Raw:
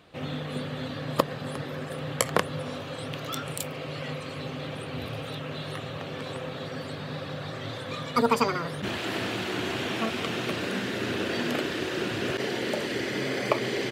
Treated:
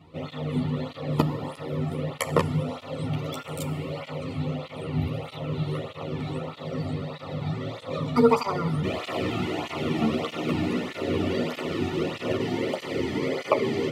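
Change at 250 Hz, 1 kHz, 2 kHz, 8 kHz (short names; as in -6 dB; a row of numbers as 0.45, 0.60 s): +4.5, 0.0, -4.0, -6.0 dB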